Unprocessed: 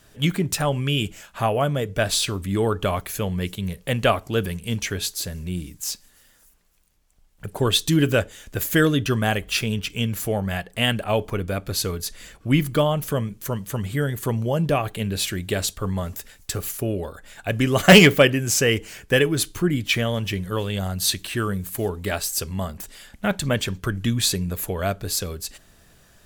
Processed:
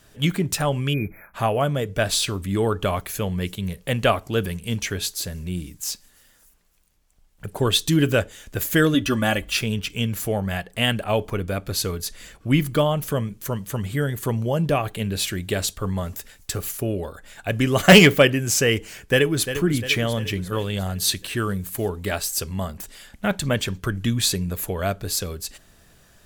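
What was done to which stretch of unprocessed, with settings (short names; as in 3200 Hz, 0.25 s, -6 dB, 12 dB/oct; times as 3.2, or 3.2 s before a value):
0.94–1.34 spectral delete 2500–11000 Hz
8.94–9.51 comb 3.5 ms, depth 67%
19.02–19.46 echo throw 0.35 s, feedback 55%, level -10 dB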